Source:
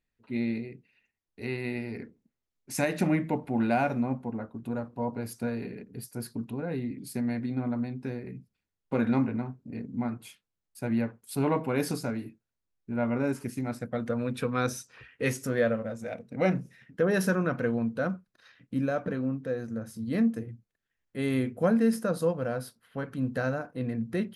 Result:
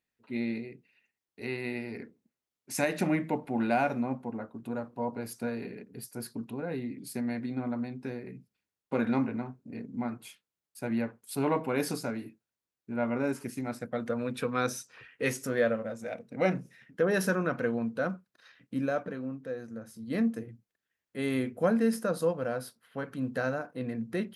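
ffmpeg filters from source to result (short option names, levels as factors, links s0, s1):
-filter_complex "[0:a]asplit=3[s0][s1][s2];[s0]atrim=end=19.032[s3];[s1]atrim=start=19.028:end=20.102,asetpts=PTS-STARTPTS,volume=0.631[s4];[s2]atrim=start=20.098[s5];[s3][s4]acrossfade=d=0.004:c1=hsin:c2=hsin[s6];[s6][s5]acrossfade=d=0.004:c1=hsin:c2=hsin,highpass=f=220:p=1"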